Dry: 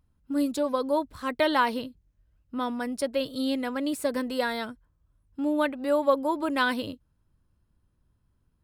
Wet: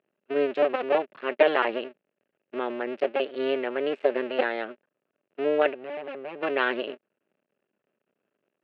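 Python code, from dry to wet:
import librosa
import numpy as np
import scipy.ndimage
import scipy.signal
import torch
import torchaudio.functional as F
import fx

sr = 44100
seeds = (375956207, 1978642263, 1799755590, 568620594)

y = fx.cycle_switch(x, sr, every=2, mode='muted')
y = fx.tube_stage(y, sr, drive_db=37.0, bias=0.75, at=(5.73, 6.41), fade=0.02)
y = fx.cabinet(y, sr, low_hz=240.0, low_slope=24, high_hz=2800.0, hz=(280.0, 410.0, 590.0, 1000.0, 1700.0, 2700.0), db=(-4, 5, 8, -6, 3, 9))
y = F.gain(torch.from_numpy(y), 2.0).numpy()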